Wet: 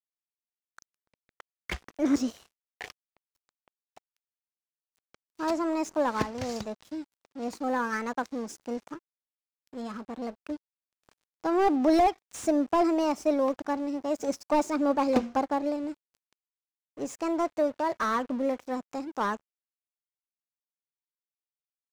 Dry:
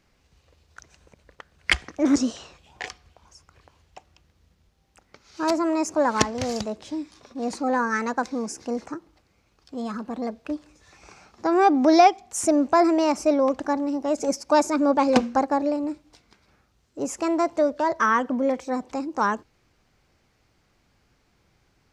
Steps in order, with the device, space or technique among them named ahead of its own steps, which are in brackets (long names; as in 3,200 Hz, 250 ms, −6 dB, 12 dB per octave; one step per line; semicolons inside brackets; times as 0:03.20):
early transistor amplifier (dead-zone distortion −42 dBFS; slew-rate limiting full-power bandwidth 140 Hz)
level −4.5 dB